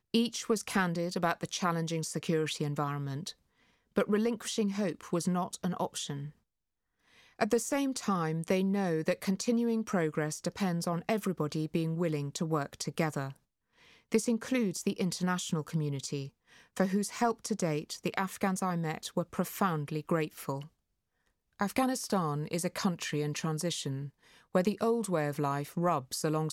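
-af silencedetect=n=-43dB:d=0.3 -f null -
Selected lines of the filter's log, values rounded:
silence_start: 3.31
silence_end: 3.96 | silence_duration: 0.65
silence_start: 6.30
silence_end: 7.39 | silence_duration: 1.10
silence_start: 13.36
silence_end: 14.12 | silence_duration: 0.76
silence_start: 16.28
silence_end: 16.77 | silence_duration: 0.48
silence_start: 20.65
silence_end: 21.60 | silence_duration: 0.94
silence_start: 24.08
silence_end: 24.55 | silence_duration: 0.46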